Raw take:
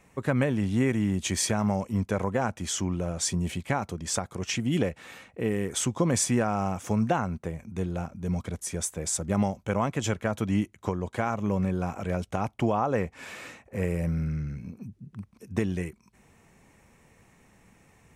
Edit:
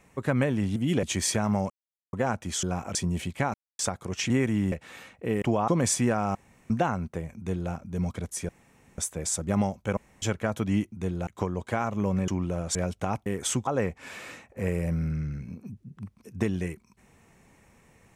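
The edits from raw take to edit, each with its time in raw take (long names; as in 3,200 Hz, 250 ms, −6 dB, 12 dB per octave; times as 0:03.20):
0:00.76–0:01.18: swap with 0:04.60–0:04.87
0:01.85–0:02.28: silence
0:02.78–0:03.25: swap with 0:11.74–0:12.06
0:03.84–0:04.09: silence
0:05.57–0:05.98: swap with 0:12.57–0:12.83
0:06.65–0:07.00: fill with room tone
0:07.67–0:08.02: duplicate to 0:10.73
0:08.79: splice in room tone 0.49 s
0:09.78–0:10.03: fill with room tone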